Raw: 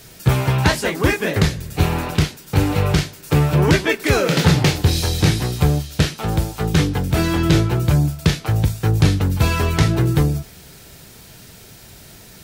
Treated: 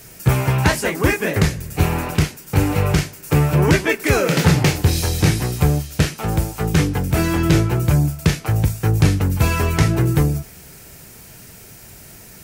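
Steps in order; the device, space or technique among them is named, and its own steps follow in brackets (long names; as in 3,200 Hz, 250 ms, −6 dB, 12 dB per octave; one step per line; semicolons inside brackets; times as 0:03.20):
exciter from parts (in parallel at −4.5 dB: high-pass filter 2,500 Hz 24 dB per octave + soft clipping −19 dBFS, distortion −16 dB + high-pass filter 2,700 Hz 12 dB per octave)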